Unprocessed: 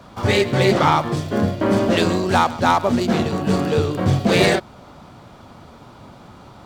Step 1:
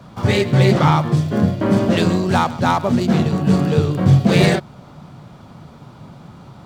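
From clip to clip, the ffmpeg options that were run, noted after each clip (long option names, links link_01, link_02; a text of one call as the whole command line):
ffmpeg -i in.wav -af "equalizer=frequency=150:width_type=o:width=0.88:gain=11,volume=-1.5dB" out.wav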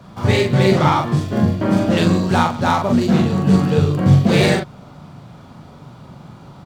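ffmpeg -i in.wav -filter_complex "[0:a]asplit=2[link_01][link_02];[link_02]adelay=42,volume=-3.5dB[link_03];[link_01][link_03]amix=inputs=2:normalize=0,volume=-1dB" out.wav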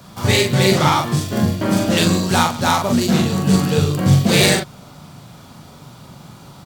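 ffmpeg -i in.wav -af "crystalizer=i=4:c=0,volume=-1.5dB" out.wav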